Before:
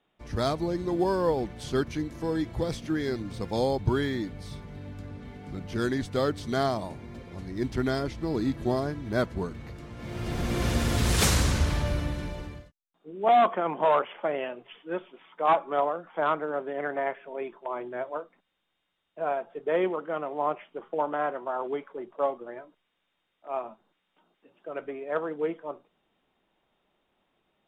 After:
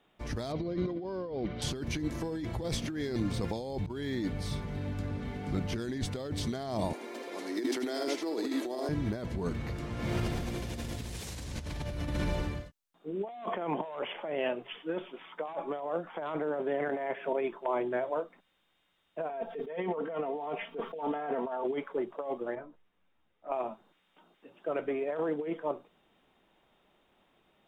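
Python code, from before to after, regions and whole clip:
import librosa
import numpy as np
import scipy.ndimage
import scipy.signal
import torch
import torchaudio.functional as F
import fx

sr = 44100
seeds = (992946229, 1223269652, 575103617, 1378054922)

y = fx.chain(x, sr, fx.lowpass(hz=4500.0, slope=24),
    fx.notch_comb(f0_hz=860.0), at=(0.52, 1.62))
y = fx.chain(y, sr, fx.steep_highpass(hz=280.0, slope=36),
    fx.high_shelf(hz=5200.0, db=6.5),
    fx.echo_single(ms=79, db=-6.0), at=(6.93, 8.89))
y = fx.chain(y, sr, fx.highpass(hz=96.0, slope=12),
    fx.band_squash(depth_pct=100), at=(16.89, 17.33))
y = fx.chain(y, sr, fx.peak_eq(hz=7900.0, db=-14.5, octaves=0.51),
    fx.comb(ms=4.4, depth=0.8),
    fx.band_squash(depth_pct=100), at=(19.29, 21.64))
y = fx.chain(y, sr, fx.lowpass(hz=1300.0, slope=6),
    fx.low_shelf(hz=170.0, db=8.5),
    fx.ensemble(), at=(22.55, 23.52))
y = fx.dynamic_eq(y, sr, hz=1300.0, q=2.1, threshold_db=-44.0, ratio=4.0, max_db=-7)
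y = fx.over_compress(y, sr, threshold_db=-34.0, ratio=-1.0)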